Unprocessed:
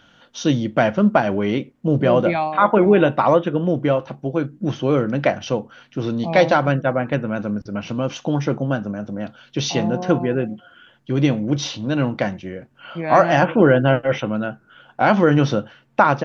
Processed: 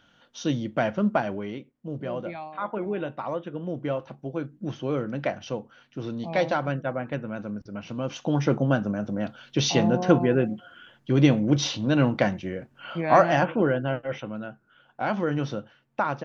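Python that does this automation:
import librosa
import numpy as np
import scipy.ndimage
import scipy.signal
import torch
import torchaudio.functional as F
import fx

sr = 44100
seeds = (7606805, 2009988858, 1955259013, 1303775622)

y = fx.gain(x, sr, db=fx.line((1.21, -8.0), (1.61, -16.0), (3.29, -16.0), (3.98, -9.5), (7.86, -9.5), (8.54, -1.0), (12.95, -1.0), (13.82, -11.5)))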